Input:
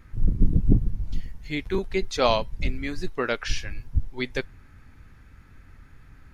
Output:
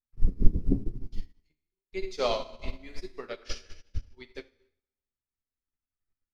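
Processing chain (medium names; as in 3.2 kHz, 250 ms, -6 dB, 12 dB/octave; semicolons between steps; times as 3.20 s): graphic EQ with 31 bands 100 Hz -11 dB, 160 Hz -6 dB, 400 Hz +4 dB, 1.6 kHz -4 dB, 5 kHz +7 dB; 1.39–1.93 s: inverted gate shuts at -27 dBFS, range -29 dB; in parallel at -3 dB: peak limiter -14.5 dBFS, peak gain reduction 7.5 dB; on the sum: Schroeder reverb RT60 1.4 s, combs from 26 ms, DRR 3.5 dB; flange 0.97 Hz, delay 7.8 ms, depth 5.3 ms, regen +43%; upward expansion 2.5:1, over -45 dBFS; trim +3.5 dB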